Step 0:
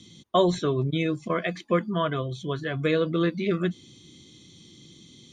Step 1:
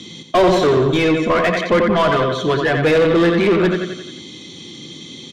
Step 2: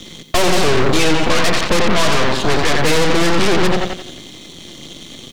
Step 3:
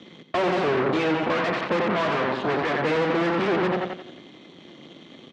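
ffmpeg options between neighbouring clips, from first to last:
ffmpeg -i in.wav -filter_complex "[0:a]aecho=1:1:88|176|264|352|440|528:0.398|0.199|0.0995|0.0498|0.0249|0.0124,asplit=2[link_01][link_02];[link_02]highpass=frequency=720:poles=1,volume=26dB,asoftclip=type=tanh:threshold=-9dB[link_03];[link_01][link_03]amix=inputs=2:normalize=0,lowpass=frequency=1500:poles=1,volume=-6dB,equalizer=frequency=1200:width_type=o:width=0.39:gain=-3,volume=4dB" out.wav
ffmpeg -i in.wav -filter_complex "[0:a]aeval=exprs='0.531*(cos(1*acos(clip(val(0)/0.531,-1,1)))-cos(1*PI/2))+0.237*(cos(8*acos(clip(val(0)/0.531,-1,1)))-cos(8*PI/2))':channel_layout=same,acrusher=bits=9:dc=4:mix=0:aa=0.000001,acrossover=split=320|3000[link_01][link_02][link_03];[link_02]acompressor=threshold=-18dB:ratio=1.5[link_04];[link_01][link_04][link_03]amix=inputs=3:normalize=0,volume=-2dB" out.wav
ffmpeg -i in.wav -af "highpass=180,lowpass=2100,volume=-6dB" out.wav

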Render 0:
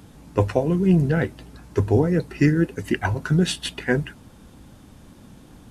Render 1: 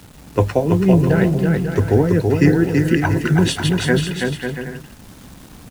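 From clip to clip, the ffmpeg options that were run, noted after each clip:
ffmpeg -i in.wav -filter_complex "[0:a]acrossover=split=190[link_01][link_02];[link_02]acrusher=bits=7:mix=0:aa=0.000001[link_03];[link_01][link_03]amix=inputs=2:normalize=0,aecho=1:1:330|544.5|683.9|774.6|833.5:0.631|0.398|0.251|0.158|0.1,volume=3.5dB" out.wav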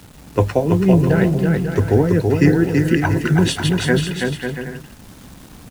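ffmpeg -i in.wav -af anull out.wav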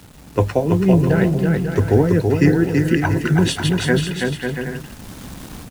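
ffmpeg -i in.wav -af "dynaudnorm=framelen=400:gausssize=3:maxgain=8dB,volume=-1dB" out.wav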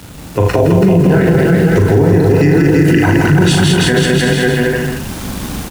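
ffmpeg -i in.wav -filter_complex "[0:a]asplit=2[link_01][link_02];[link_02]aecho=0:1:41|75|164|212:0.631|0.376|0.473|0.562[link_03];[link_01][link_03]amix=inputs=2:normalize=0,alimiter=level_in=10.5dB:limit=-1dB:release=50:level=0:latency=1,volume=-1dB" out.wav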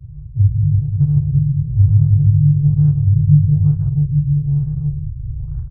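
ffmpeg -i in.wav -af "afftfilt=real='re*(1-between(b*sr/4096,160,9400))':imag='im*(1-between(b*sr/4096,160,9400))':win_size=4096:overlap=0.75,adynamicsmooth=sensitivity=4:basefreq=880,afftfilt=real='re*lt(b*sr/1024,330*pow(1800/330,0.5+0.5*sin(2*PI*1.1*pts/sr)))':imag='im*lt(b*sr/1024,330*pow(1800/330,0.5+0.5*sin(2*PI*1.1*pts/sr)))':win_size=1024:overlap=0.75,volume=2.5dB" out.wav

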